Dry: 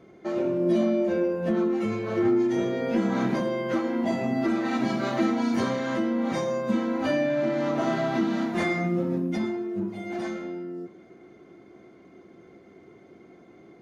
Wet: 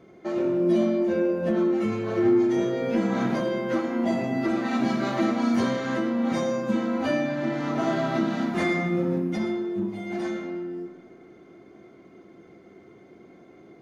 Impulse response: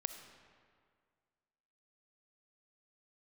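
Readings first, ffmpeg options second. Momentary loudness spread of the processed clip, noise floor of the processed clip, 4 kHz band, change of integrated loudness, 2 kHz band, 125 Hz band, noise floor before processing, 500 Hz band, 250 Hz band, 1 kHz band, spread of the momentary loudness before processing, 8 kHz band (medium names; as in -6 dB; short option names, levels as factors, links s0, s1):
8 LU, -51 dBFS, +1.0 dB, +1.0 dB, +1.0 dB, +1.0 dB, -52 dBFS, +0.5 dB, +1.0 dB, +0.5 dB, 9 LU, no reading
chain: -filter_complex "[1:a]atrim=start_sample=2205[s0];[0:a][s0]afir=irnorm=-1:irlink=0,volume=1.19"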